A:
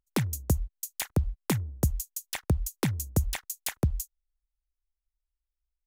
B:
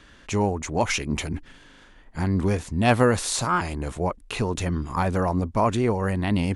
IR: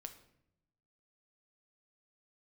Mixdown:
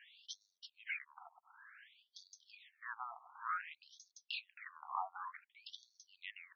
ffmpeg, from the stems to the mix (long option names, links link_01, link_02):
-filter_complex "[0:a]asoftclip=type=tanh:threshold=-20dB,adelay=2000,volume=-12dB[link_01];[1:a]acompressor=threshold=-33dB:ratio=3,lowpass=6800,volume=-3.5dB[link_02];[link_01][link_02]amix=inputs=2:normalize=0,afftfilt=real='re*between(b*sr/1024,930*pow(4800/930,0.5+0.5*sin(2*PI*0.55*pts/sr))/1.41,930*pow(4800/930,0.5+0.5*sin(2*PI*0.55*pts/sr))*1.41)':imag='im*between(b*sr/1024,930*pow(4800/930,0.5+0.5*sin(2*PI*0.55*pts/sr))/1.41,930*pow(4800/930,0.5+0.5*sin(2*PI*0.55*pts/sr))*1.41)':win_size=1024:overlap=0.75"